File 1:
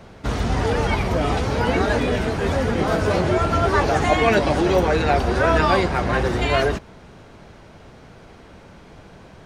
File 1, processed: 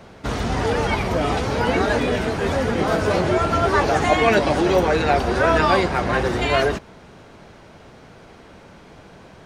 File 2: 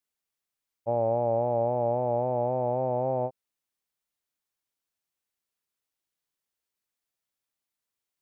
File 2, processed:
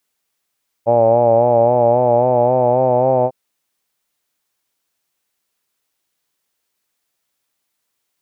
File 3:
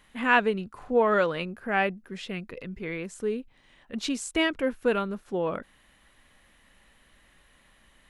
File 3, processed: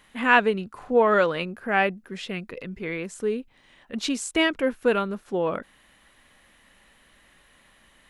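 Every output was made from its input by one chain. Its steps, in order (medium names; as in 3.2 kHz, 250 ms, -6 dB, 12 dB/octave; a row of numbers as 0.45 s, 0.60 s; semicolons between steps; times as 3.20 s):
bass shelf 110 Hz -6.5 dB; peak normalisation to -3 dBFS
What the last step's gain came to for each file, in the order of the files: +1.0 dB, +14.0 dB, +3.5 dB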